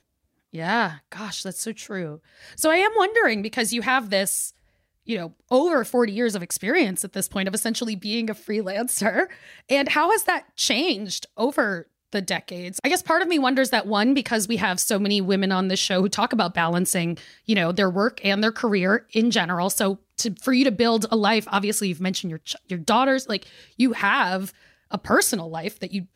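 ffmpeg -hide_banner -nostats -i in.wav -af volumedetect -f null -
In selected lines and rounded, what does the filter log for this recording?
mean_volume: -23.2 dB
max_volume: -7.4 dB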